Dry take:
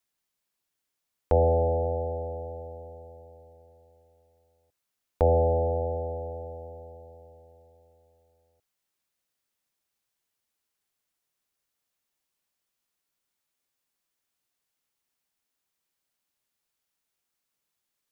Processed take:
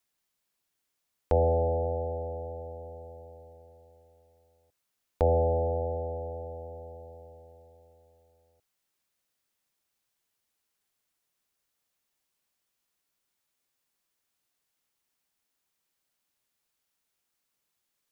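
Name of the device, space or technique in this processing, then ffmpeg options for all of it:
parallel compression: -filter_complex "[0:a]asplit=2[link_01][link_02];[link_02]acompressor=threshold=-42dB:ratio=6,volume=-3dB[link_03];[link_01][link_03]amix=inputs=2:normalize=0,volume=-3dB"

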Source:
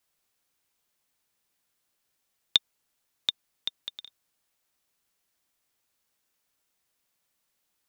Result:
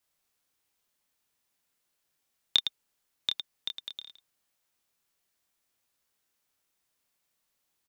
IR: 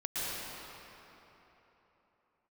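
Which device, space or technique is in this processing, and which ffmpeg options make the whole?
slapback doubling: -filter_complex "[0:a]asplit=3[link_01][link_02][link_03];[link_02]adelay=27,volume=-5.5dB[link_04];[link_03]adelay=109,volume=-8dB[link_05];[link_01][link_04][link_05]amix=inputs=3:normalize=0,volume=-3dB"

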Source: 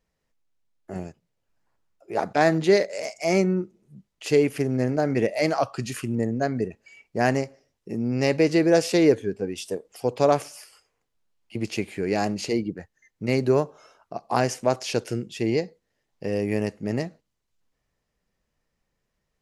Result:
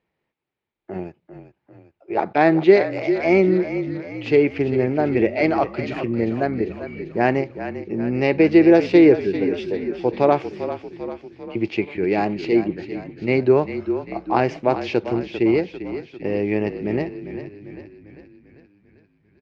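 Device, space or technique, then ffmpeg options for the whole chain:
frequency-shifting delay pedal into a guitar cabinet: -filter_complex "[0:a]asplit=8[link_01][link_02][link_03][link_04][link_05][link_06][link_07][link_08];[link_02]adelay=396,afreqshift=-35,volume=-11dB[link_09];[link_03]adelay=792,afreqshift=-70,volume=-15.7dB[link_10];[link_04]adelay=1188,afreqshift=-105,volume=-20.5dB[link_11];[link_05]adelay=1584,afreqshift=-140,volume=-25.2dB[link_12];[link_06]adelay=1980,afreqshift=-175,volume=-29.9dB[link_13];[link_07]adelay=2376,afreqshift=-210,volume=-34.7dB[link_14];[link_08]adelay=2772,afreqshift=-245,volume=-39.4dB[link_15];[link_01][link_09][link_10][link_11][link_12][link_13][link_14][link_15]amix=inputs=8:normalize=0,highpass=85,equalizer=frequency=350:width_type=q:width=4:gain=9,equalizer=frequency=850:width_type=q:width=4:gain=5,equalizer=frequency=2300:width_type=q:width=4:gain=6,lowpass=frequency=3800:width=0.5412,lowpass=frequency=3800:width=1.3066,volume=1dB"

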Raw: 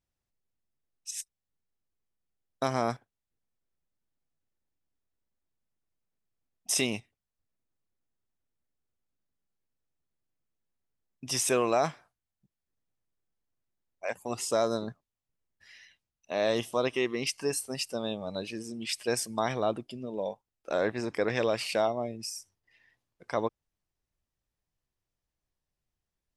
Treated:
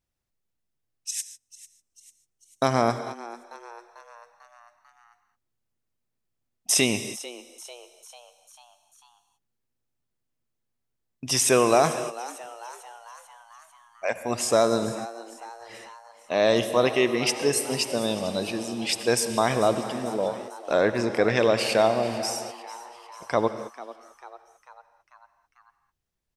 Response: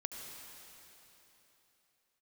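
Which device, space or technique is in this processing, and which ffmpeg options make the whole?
keyed gated reverb: -filter_complex "[0:a]asplit=3[link_01][link_02][link_03];[1:a]atrim=start_sample=2205[link_04];[link_02][link_04]afir=irnorm=-1:irlink=0[link_05];[link_03]apad=whole_len=1162841[link_06];[link_05][link_06]sidechaingate=range=-33dB:threshold=-54dB:ratio=16:detection=peak,volume=-1dB[link_07];[link_01][link_07]amix=inputs=2:normalize=0,asplit=6[link_08][link_09][link_10][link_11][link_12][link_13];[link_09]adelay=445,afreqshift=120,volume=-17dB[link_14];[link_10]adelay=890,afreqshift=240,volume=-22dB[link_15];[link_11]adelay=1335,afreqshift=360,volume=-27.1dB[link_16];[link_12]adelay=1780,afreqshift=480,volume=-32.1dB[link_17];[link_13]adelay=2225,afreqshift=600,volume=-37.1dB[link_18];[link_08][link_14][link_15][link_16][link_17][link_18]amix=inputs=6:normalize=0,volume=2.5dB"

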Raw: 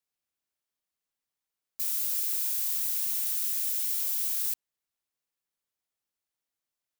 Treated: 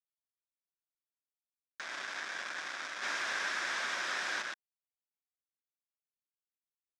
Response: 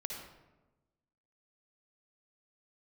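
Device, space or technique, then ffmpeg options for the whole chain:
hand-held game console: -filter_complex "[0:a]asettb=1/sr,asplit=3[link_01][link_02][link_03];[link_01]atrim=end=3.034[link_04];[link_02]atrim=start=3.03:end=4.42,asetpts=PTS-STARTPTS,afade=type=in:duration=0.004:curve=qsin,afade=type=out:start_time=1.386:duration=0.004:curve=qsin,highshelf=frequency=2800:gain=4.5[link_05];[link_03]atrim=start=4.416[link_06];[link_04][link_05]acrossfade=duration=0.004:curve1=hsin:curve2=qsin[link_07];[link_07][link_06]acrossfade=duration=0.004:curve1=qsin:curve2=hsin,acrusher=bits=3:mix=0:aa=0.000001,highpass=440,equalizer=frequency=460:width_type=q:width=4:gain=-8,equalizer=frequency=830:width_type=q:width=4:gain=-4,equalizer=frequency=1600:width_type=q:width=4:gain=9,equalizer=frequency=2900:width_type=q:width=4:gain=-8,equalizer=frequency=4300:width_type=q:width=4:gain=-9,lowpass=frequency=4600:width=0.5412,lowpass=frequency=4600:width=1.3066"

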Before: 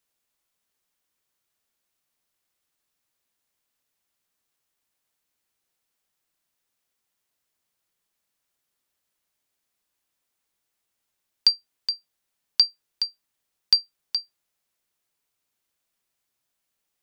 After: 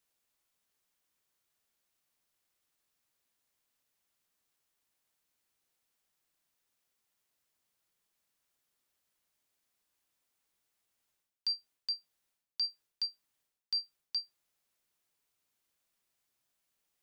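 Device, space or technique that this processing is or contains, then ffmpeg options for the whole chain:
compression on the reversed sound: -af "areverse,acompressor=threshold=-30dB:ratio=10,areverse,volume=-2dB"

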